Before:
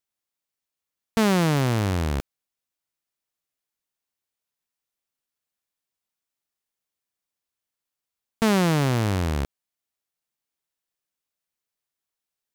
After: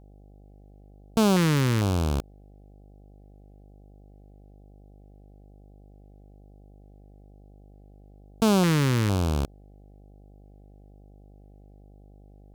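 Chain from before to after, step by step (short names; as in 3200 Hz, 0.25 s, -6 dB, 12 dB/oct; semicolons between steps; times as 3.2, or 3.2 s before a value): LFO notch square 1.1 Hz 700–1900 Hz; buzz 50 Hz, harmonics 16, -51 dBFS -6 dB/oct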